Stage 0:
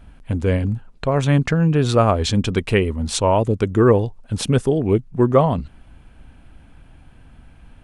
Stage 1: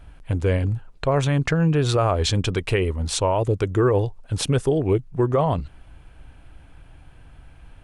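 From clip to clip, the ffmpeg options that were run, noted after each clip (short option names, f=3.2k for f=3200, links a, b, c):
-af "equalizer=f=220:t=o:w=0.36:g=-13.5,alimiter=limit=-11dB:level=0:latency=1:release=70"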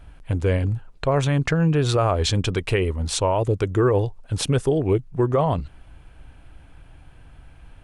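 -af anull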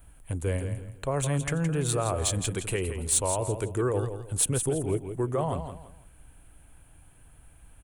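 -filter_complex "[0:a]aecho=1:1:167|334|501:0.355|0.103|0.0298,acrossover=split=390|790[a][b][c];[c]aexciter=amount=4.8:drive=9.6:freq=7.4k[d];[a][b][d]amix=inputs=3:normalize=0,volume=-8.5dB"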